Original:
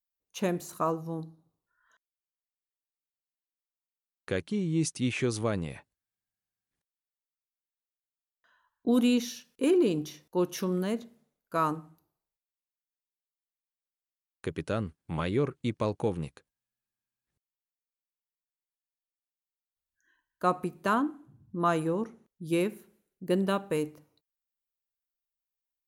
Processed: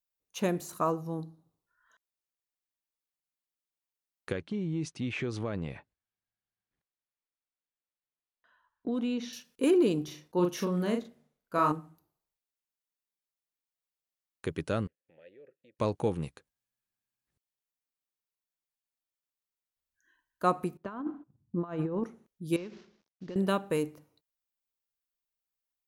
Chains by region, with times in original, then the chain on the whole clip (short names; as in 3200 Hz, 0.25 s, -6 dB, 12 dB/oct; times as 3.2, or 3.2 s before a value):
4.32–9.33 Bessel low-pass 3200 Hz + compressor 3:1, threshold -30 dBFS
10.04–11.72 high shelf 6700 Hz -7.5 dB + doubler 40 ms -4 dB
14.87–15.79 compressor 3:1, threshold -43 dBFS + vowel filter e
20.77–22.04 gate -54 dBFS, range -18 dB + negative-ratio compressor -31 dBFS, ratio -0.5 + tape spacing loss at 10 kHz 28 dB
22.56–23.36 CVSD 32 kbps + compressor, threshold -38 dBFS
whole clip: dry